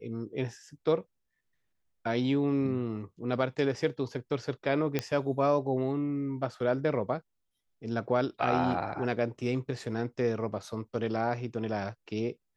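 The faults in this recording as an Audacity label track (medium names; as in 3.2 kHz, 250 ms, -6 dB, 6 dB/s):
4.990000	4.990000	pop -14 dBFS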